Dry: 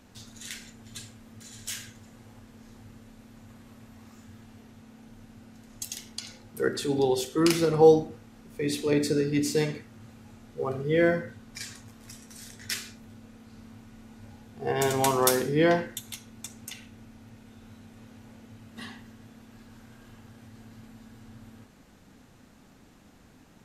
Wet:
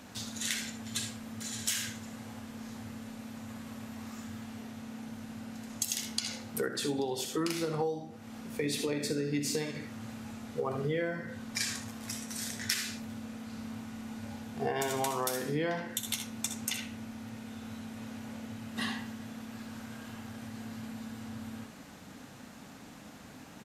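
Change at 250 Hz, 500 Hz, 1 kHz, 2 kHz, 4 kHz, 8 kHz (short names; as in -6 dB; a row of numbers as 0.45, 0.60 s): -5.5, -10.0, -6.5, -3.5, 0.0, 0.0 dB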